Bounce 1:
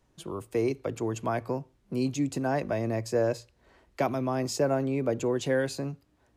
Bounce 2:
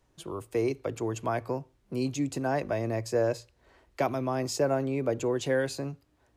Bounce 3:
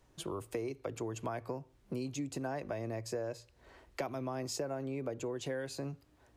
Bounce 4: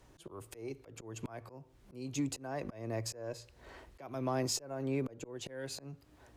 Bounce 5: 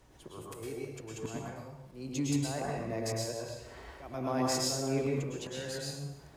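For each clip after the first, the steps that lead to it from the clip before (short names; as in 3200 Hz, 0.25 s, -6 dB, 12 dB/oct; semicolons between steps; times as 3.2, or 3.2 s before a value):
bell 200 Hz -5 dB 0.68 oct
compressor 5:1, threshold -38 dBFS, peak gain reduction 15.5 dB; gain +2 dB
auto swell 0.352 s; added harmonics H 8 -34 dB, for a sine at -28 dBFS; gain +5.5 dB
plate-style reverb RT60 0.84 s, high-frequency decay 0.95×, pre-delay 95 ms, DRR -3.5 dB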